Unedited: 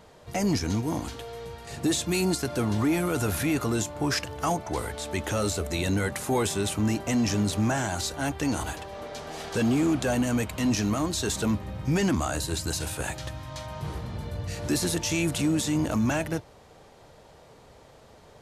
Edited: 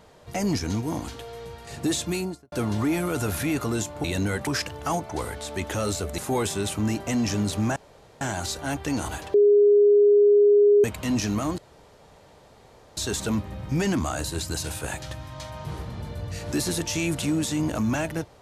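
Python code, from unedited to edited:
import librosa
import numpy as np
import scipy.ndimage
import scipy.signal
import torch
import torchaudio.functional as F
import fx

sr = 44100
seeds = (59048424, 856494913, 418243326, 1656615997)

y = fx.studio_fade_out(x, sr, start_s=2.04, length_s=0.48)
y = fx.edit(y, sr, fx.move(start_s=5.75, length_s=0.43, to_s=4.04),
    fx.insert_room_tone(at_s=7.76, length_s=0.45),
    fx.bleep(start_s=8.89, length_s=1.5, hz=411.0, db=-13.0),
    fx.insert_room_tone(at_s=11.13, length_s=1.39), tone=tone)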